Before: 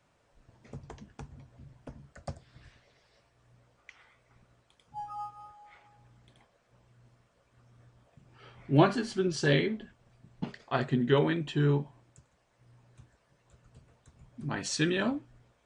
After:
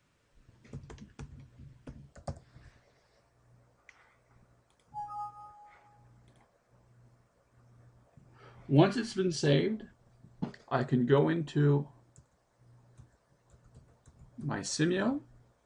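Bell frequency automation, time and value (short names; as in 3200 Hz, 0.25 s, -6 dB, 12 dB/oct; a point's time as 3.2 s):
bell -9 dB 1 oct
1.89 s 730 Hz
2.31 s 3100 Hz
8.55 s 3100 Hz
9.07 s 470 Hz
9.65 s 2700 Hz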